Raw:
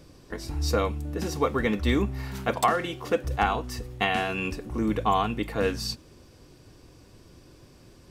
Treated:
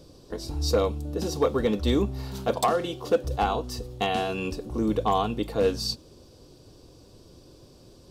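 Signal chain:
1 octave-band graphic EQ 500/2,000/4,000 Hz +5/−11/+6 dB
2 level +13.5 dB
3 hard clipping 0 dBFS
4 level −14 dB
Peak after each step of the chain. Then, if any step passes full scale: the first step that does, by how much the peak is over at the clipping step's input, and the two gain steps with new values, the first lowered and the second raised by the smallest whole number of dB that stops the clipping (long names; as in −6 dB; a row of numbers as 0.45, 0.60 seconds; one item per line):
−8.0, +5.5, 0.0, −14.0 dBFS
step 2, 5.5 dB
step 2 +7.5 dB, step 4 −8 dB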